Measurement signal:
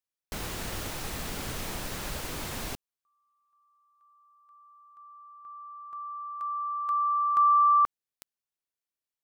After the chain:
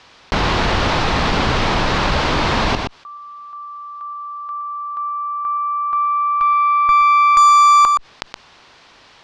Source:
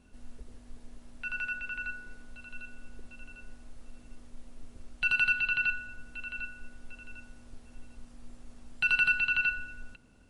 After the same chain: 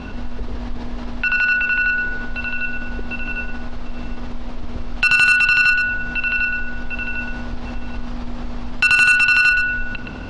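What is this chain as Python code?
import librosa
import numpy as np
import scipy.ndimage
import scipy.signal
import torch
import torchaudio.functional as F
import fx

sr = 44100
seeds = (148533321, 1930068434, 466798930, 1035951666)

p1 = scipy.signal.sosfilt(scipy.signal.butter(4, 4700.0, 'lowpass', fs=sr, output='sos'), x)
p2 = fx.peak_eq(p1, sr, hz=980.0, db=5.5, octaves=0.89)
p3 = 10.0 ** (-21.0 / 20.0) * np.tanh(p2 / 10.0 ** (-21.0 / 20.0))
p4 = p2 + (p3 * 10.0 ** (-3.0 / 20.0))
p5 = fx.cheby_harmonics(p4, sr, harmonics=(2, 4, 6, 8), levels_db=(-33, -35, -18, -25), full_scale_db=-10.5)
p6 = p5 + fx.echo_single(p5, sr, ms=121, db=-11.0, dry=0)
p7 = fx.env_flatten(p6, sr, amount_pct=50)
y = p7 * 10.0 ** (6.0 / 20.0)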